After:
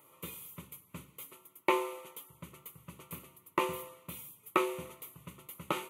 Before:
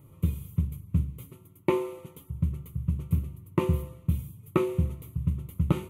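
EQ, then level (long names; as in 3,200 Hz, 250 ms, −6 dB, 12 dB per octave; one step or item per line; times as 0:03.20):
high-pass filter 700 Hz 12 dB per octave
+5.0 dB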